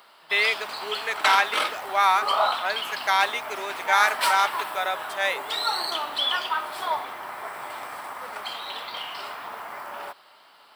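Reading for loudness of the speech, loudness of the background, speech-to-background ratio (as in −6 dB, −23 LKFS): −24.5 LKFS, −28.5 LKFS, 4.0 dB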